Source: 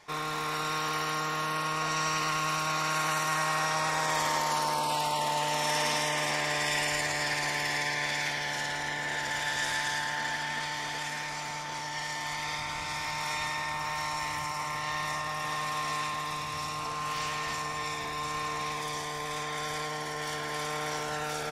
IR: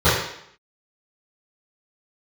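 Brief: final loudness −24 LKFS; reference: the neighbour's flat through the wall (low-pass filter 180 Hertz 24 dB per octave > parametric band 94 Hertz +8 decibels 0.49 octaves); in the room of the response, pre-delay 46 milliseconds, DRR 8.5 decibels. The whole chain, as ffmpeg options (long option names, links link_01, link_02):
-filter_complex "[0:a]asplit=2[link_01][link_02];[1:a]atrim=start_sample=2205,adelay=46[link_03];[link_02][link_03]afir=irnorm=-1:irlink=0,volume=-32dB[link_04];[link_01][link_04]amix=inputs=2:normalize=0,lowpass=frequency=180:width=0.5412,lowpass=frequency=180:width=1.3066,equalizer=frequency=94:width_type=o:width=0.49:gain=8,volume=21.5dB"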